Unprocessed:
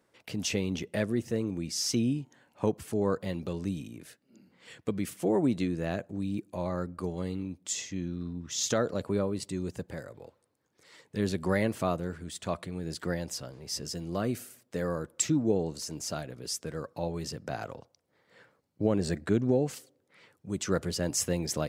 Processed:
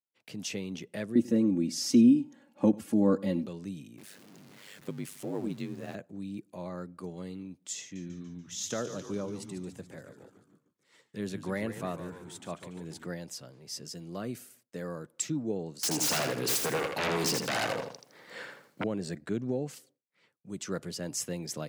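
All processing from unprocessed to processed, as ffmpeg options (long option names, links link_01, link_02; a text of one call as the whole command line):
ffmpeg -i in.wav -filter_complex "[0:a]asettb=1/sr,asplit=3[link_01][link_02][link_03];[link_01]atrim=end=1.154[link_04];[link_02]atrim=start=1.15:end=3.46,asetpts=PTS-STARTPTS,afade=type=in:duration=0.004:curve=qsin,afade=type=out:start_time=2.306:duration=0.004:curve=qsin,equalizer=frequency=210:width=0.38:gain=11,aecho=1:1:3.6:0.81,atrim=end_sample=101871,aecho=1:1:95:0.0841,atrim=end_sample=101871[link_05];[link_03]atrim=start=3.456[link_06];[link_04][link_05]acrossfade=duration=0.004:curve1=hsin:curve2=qsin[link_07];[link_07][link_06]acrossfade=duration=0.004:curve1=qsin:curve2=hsin,asettb=1/sr,asplit=3[link_08][link_09][link_10];[link_08]atrim=end=3.984[link_11];[link_09]atrim=start=3.98:end=5.95,asetpts=PTS-STARTPTS,afade=type=in:duration=0.004:curve=qsin,afade=type=out:start_time=1.966:duration=0.004:curve=qsin,aeval=exprs='val(0)+0.5*0.0106*sgn(val(0))':channel_layout=same,aeval=exprs='val(0)*sin(2*PI*50*n/s)':channel_layout=same[link_12];[link_10]atrim=start=5.946[link_13];[link_11][link_12]acrossfade=duration=0.004:curve1=hsin:curve2=qsin[link_14];[link_14][link_13]acrossfade=duration=0.004:curve1=qsin:curve2=hsin,asettb=1/sr,asplit=3[link_15][link_16][link_17];[link_15]atrim=end=7.814[link_18];[link_16]atrim=start=7.81:end=13.06,asetpts=PTS-STARTPTS,afade=type=in:duration=0.004:curve=qsin,afade=type=out:start_time=5.246:duration=0.004:curve=qsin,equalizer=frequency=4600:width_type=o:width=0.31:gain=-5,asplit=8[link_19][link_20][link_21][link_22][link_23][link_24][link_25][link_26];[link_20]adelay=144,afreqshift=-93,volume=-10dB[link_27];[link_21]adelay=288,afreqshift=-186,volume=-14.4dB[link_28];[link_22]adelay=432,afreqshift=-279,volume=-18.9dB[link_29];[link_23]adelay=576,afreqshift=-372,volume=-23.3dB[link_30];[link_24]adelay=720,afreqshift=-465,volume=-27.7dB[link_31];[link_25]adelay=864,afreqshift=-558,volume=-32.2dB[link_32];[link_26]adelay=1008,afreqshift=-651,volume=-36.6dB[link_33];[link_19][link_27][link_28][link_29][link_30][link_31][link_32][link_33]amix=inputs=8:normalize=0,atrim=end_sample=231525[link_34];[link_17]atrim=start=13.056[link_35];[link_18][link_34]acrossfade=duration=0.004:curve1=hsin:curve2=qsin[link_36];[link_36][link_35]acrossfade=duration=0.004:curve1=qsin:curve2=hsin,asettb=1/sr,asplit=3[link_37][link_38][link_39];[link_37]atrim=end=15.834[link_40];[link_38]atrim=start=15.83:end=18.84,asetpts=PTS-STARTPTS,afade=type=in:duration=0.004:curve=qsin,afade=type=out:start_time=3.006:duration=0.004:curve=qsin,highpass=frequency=310:poles=1,aeval=exprs='0.0944*sin(PI/2*7.08*val(0)/0.0944)':channel_layout=same,aecho=1:1:81|162|243|324:0.562|0.169|0.0506|0.0152,atrim=end_sample=132741[link_41];[link_39]atrim=start=18.836[link_42];[link_40][link_41]acrossfade=duration=0.004:curve1=hsin:curve2=qsin[link_43];[link_43][link_42]acrossfade=duration=0.004:curve1=qsin:curve2=hsin,agate=range=-33dB:threshold=-53dB:ratio=3:detection=peak,highpass=frequency=120:width=0.5412,highpass=frequency=120:width=1.3066,equalizer=frequency=700:width=0.42:gain=-2.5,volume=-4.5dB" out.wav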